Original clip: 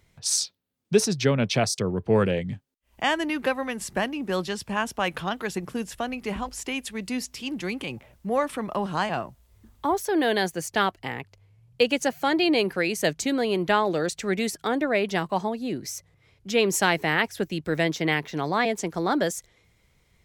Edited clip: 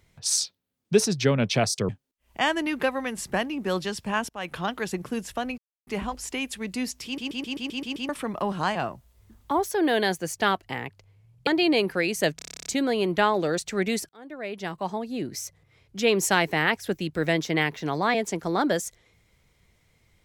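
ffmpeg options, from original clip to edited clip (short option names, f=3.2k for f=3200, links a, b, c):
-filter_complex "[0:a]asplit=24[a][b][c][d][e][f][g][h][i][j][k][l][m][n][o][p][q][r][s][t][u][v][w][x];[a]atrim=end=1.892[y];[b]atrim=start=2.518:end=4.92,asetpts=PTS-STARTPTS,afade=t=out:st=2.398:d=0.004:c=hsin:silence=0.0891251[z];[c]atrim=start=4.92:end=6.21,asetpts=PTS-STARTPTS,afade=t=in:d=0.35:silence=0.0891251,afade=t=out:st=1.286:d=0.004:c=hsin,apad=pad_dur=0.29[aa];[d]atrim=start=6.21:end=7.522,asetpts=PTS-STARTPTS,afade=t=in:d=0.004:c=hsin[ab];[e]atrim=start=7.388:end=7.522[ac];[f]atrim=start=7.388:end=7.522[ad];[g]atrim=start=7.388:end=7.522[ae];[h]atrim=start=7.388:end=7.522[af];[i]atrim=start=7.388:end=7.522[ag];[j]atrim=start=7.388:end=7.522[ah];[k]atrim=start=7.388:end=7.522[ai];[l]atrim=start=8.428:end=11.812[aj];[m]atrim=start=12.278:end=13.202[ak];[n]atrim=start=13.168:end=13.202[al];[o]atrim=start=13.168:end=13.202[am];[p]atrim=start=13.168:end=13.202[an];[q]atrim=start=13.168:end=13.202[ao];[r]atrim=start=13.168:end=13.202[ap];[s]atrim=start=13.168:end=13.202[aq];[t]atrim=start=13.168:end=13.202[ar];[u]atrim=start=13.168:end=13.202[as];[v]atrim=start=13.168:end=13.202[at];[w]atrim=start=13.168:end=14.6,asetpts=PTS-STARTPTS,afade=t=out:st=1.428:d=0.004:c=hsin[au];[x]atrim=start=14.6,asetpts=PTS-STARTPTS,afade=t=in:d=1.24[av];[z][aa][ab]concat=n=3:v=0:a=1[aw];[y][aw]acrossfade=d=0.004:c1=hsin:c2=hsin[ax];[ax][ac]acrossfade=d=0.004:c1=hsin:c2=hsin[ay];[ay][ad]acrossfade=d=0.004:c1=hsin:c2=hsin[az];[az][ae]acrossfade=d=0.004:c1=hsin:c2=hsin[ba];[ba][af]acrossfade=d=0.004:c1=hsin:c2=hsin[bb];[bb][ag]acrossfade=d=0.004:c1=hsin:c2=hsin[bc];[bc][ah]acrossfade=d=0.004:c1=hsin:c2=hsin[bd];[bd][ai]acrossfade=d=0.004:c1=hsin:c2=hsin[be];[be][aj]acrossfade=d=0.004:c1=hsin:c2=hsin[bf];[bf][ak]acrossfade=d=0.004:c1=hsin:c2=hsin[bg];[bg][al]acrossfade=d=0.004:c1=hsin:c2=hsin[bh];[bh][am]acrossfade=d=0.004:c1=hsin:c2=hsin[bi];[bi][an]acrossfade=d=0.004:c1=hsin:c2=hsin[bj];[bj][ao]acrossfade=d=0.004:c1=hsin:c2=hsin[bk];[bk][ap]acrossfade=d=0.004:c1=hsin:c2=hsin[bl];[bl][aq]acrossfade=d=0.004:c1=hsin:c2=hsin[bm];[bm][ar]acrossfade=d=0.004:c1=hsin:c2=hsin[bn];[bn][as]acrossfade=d=0.004:c1=hsin:c2=hsin[bo];[bo][at]acrossfade=d=0.004:c1=hsin:c2=hsin[bp];[au][av]concat=n=2:v=0:a=1[bq];[bp][bq]acrossfade=d=0.004:c1=hsin:c2=hsin"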